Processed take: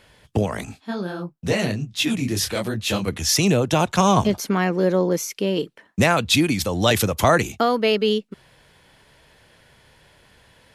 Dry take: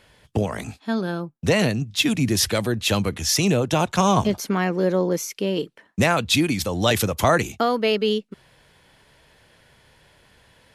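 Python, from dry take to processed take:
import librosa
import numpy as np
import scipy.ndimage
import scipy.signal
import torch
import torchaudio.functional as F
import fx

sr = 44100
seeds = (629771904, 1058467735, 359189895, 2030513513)

y = fx.detune_double(x, sr, cents=49, at=(0.65, 3.08))
y = y * 10.0 ** (1.5 / 20.0)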